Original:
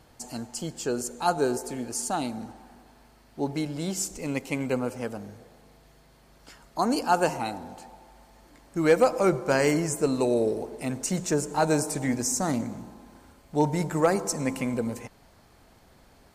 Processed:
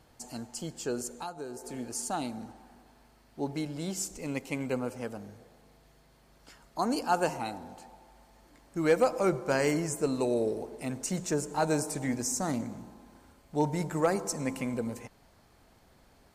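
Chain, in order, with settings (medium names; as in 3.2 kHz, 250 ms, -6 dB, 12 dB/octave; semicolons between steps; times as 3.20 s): 1.08–1.74 s: compression 16:1, threshold -31 dBFS, peak gain reduction 14 dB; trim -4.5 dB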